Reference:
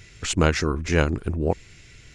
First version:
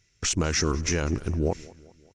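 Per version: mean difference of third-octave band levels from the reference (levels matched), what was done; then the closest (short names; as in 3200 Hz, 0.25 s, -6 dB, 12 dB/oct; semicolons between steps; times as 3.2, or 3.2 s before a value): 6.0 dB: gate with hold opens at -35 dBFS; bell 5800 Hz +12.5 dB 0.37 oct; limiter -14.5 dBFS, peak gain reduction 10 dB; on a send: feedback echo 0.195 s, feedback 53%, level -21 dB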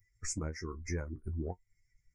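10.0 dB: per-bin expansion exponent 2; elliptic band-stop 2100–5200 Hz, stop band 40 dB; compressor 12:1, threshold -34 dBFS, peak gain reduction 19 dB; flange 1.2 Hz, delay 10 ms, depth 3.7 ms, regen +37%; gain +3.5 dB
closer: first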